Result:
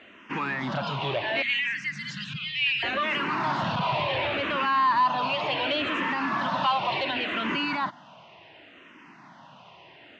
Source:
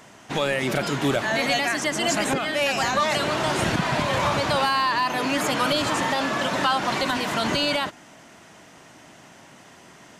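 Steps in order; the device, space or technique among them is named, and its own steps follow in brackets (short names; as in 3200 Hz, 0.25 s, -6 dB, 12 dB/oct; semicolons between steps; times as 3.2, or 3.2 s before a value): 1.42–2.83 Chebyshev band-stop 170–1900 Hz, order 3; barber-pole phaser into a guitar amplifier (endless phaser -0.69 Hz; soft clip -21.5 dBFS, distortion -16 dB; speaker cabinet 110–4000 Hz, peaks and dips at 450 Hz -4 dB, 1000 Hz +6 dB, 2700 Hz +7 dB)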